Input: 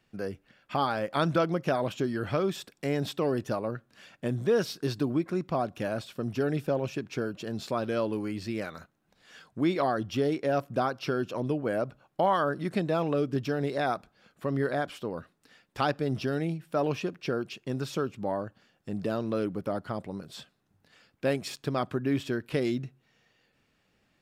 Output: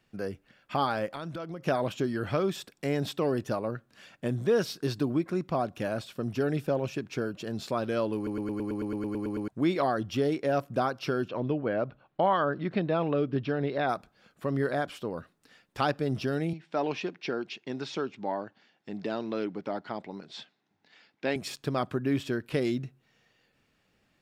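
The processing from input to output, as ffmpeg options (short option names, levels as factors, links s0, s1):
-filter_complex "[0:a]asettb=1/sr,asplit=3[s0][s1][s2];[s0]atrim=end=1.124[s3];[s1]atrim=start=1.12:end=1.63,asetpts=PTS-STARTPTS,afade=t=in:d=0.004:c=qsin,afade=t=out:st=0.506:d=0.004:c=qsin,acompressor=threshold=0.0158:ratio=4:attack=3.2:release=140:knee=1:detection=peak[s4];[s2]atrim=start=1.626[s5];[s3][s4]acrossfade=d=0.004:c1=hsin:c2=qsin[s6];[s6][s5]acrossfade=d=0.004:c1=qsin:c2=hsin,asettb=1/sr,asplit=3[s7][s8][s9];[s7]atrim=end=11.284[s10];[s8]atrim=start=11.28:end=13.89,asetpts=PTS-STARTPTS,afade=t=in:d=0.004:c=qsin,afade=t=out:st=2.606:d=0.004:c=qsin,lowpass=f=4000:w=0.5412,lowpass=f=4000:w=1.3066[s11];[s9]atrim=start=13.886[s12];[s10][s11]acrossfade=d=0.004:c1=hsin:c2=qsin[s13];[s13][s12]acrossfade=d=0.004:c1=qsin:c2=hsin,asettb=1/sr,asplit=3[s14][s15][s16];[s14]atrim=end=16.534[s17];[s15]atrim=start=16.53:end=21.36,asetpts=PTS-STARTPTS,afade=t=in:d=0.004:c=qsin,afade=t=out:st=4.826:d=0.004:c=qsin,highpass=230,equalizer=f=530:t=q:w=4:g=-5,equalizer=f=860:t=q:w=4:g=4,equalizer=f=1200:t=q:w=4:g=-4,equalizer=f=2100:t=q:w=4:g=5,equalizer=f=3700:t=q:w=4:g=3,lowpass=f=6100:w=0.5412,lowpass=f=6100:w=1.3066[s18];[s16]atrim=start=21.356[s19];[s17][s18]acrossfade=d=0.004:c1=hsin:c2=qsin[s20];[s20][s19]acrossfade=d=0.004:c1=qsin:c2=hsin,asplit=13[s21][s22][s23][s24][s25][s26][s27][s28][s29][s30][s31][s32][s33];[s21]atrim=end=8.272[s34];[s22]atrim=start=8.158:end=8.272[s35];[s23]atrim=start=8.158:end=8.272[s36];[s24]atrim=start=8.158:end=8.272[s37];[s25]atrim=start=8.158:end=8.272[s38];[s26]atrim=start=8.158:end=8.272[s39];[s27]atrim=start=8.158:end=8.272[s40];[s28]atrim=start=8.158:end=8.272[s41];[s29]atrim=start=8.158:end=8.272[s42];[s30]atrim=start=8.158:end=8.272[s43];[s31]atrim=start=8.158:end=8.272[s44];[s32]atrim=start=8.158:end=8.272[s45];[s33]atrim=start=9.478[s46];[s34][s35]acrossfade=d=0.004:c1=hsin:c2=hsin[s47];[s47][s36]acrossfade=d=0.004:c1=hsin:c2=hsin[s48];[s48][s37]acrossfade=d=0.004:c1=hsin:c2=hsin[s49];[s49][s38]acrossfade=d=0.004:c1=hsin:c2=hsin[s50];[s50][s39]acrossfade=d=0.004:c1=hsin:c2=hsin[s51];[s51][s40]acrossfade=d=0.004:c1=hsin:c2=hsin[s52];[s52][s41]acrossfade=d=0.004:c1=hsin:c2=hsin[s53];[s53][s42]acrossfade=d=0.004:c1=hsin:c2=hsin[s54];[s54][s43]acrossfade=d=0.004:c1=hsin:c2=hsin[s55];[s55][s44]acrossfade=d=0.004:c1=hsin:c2=hsin[s56];[s56][s45]acrossfade=d=0.004:c1=hsin:c2=hsin[s57];[s57][s46]acrossfade=d=0.004:c1=hsin:c2=hsin"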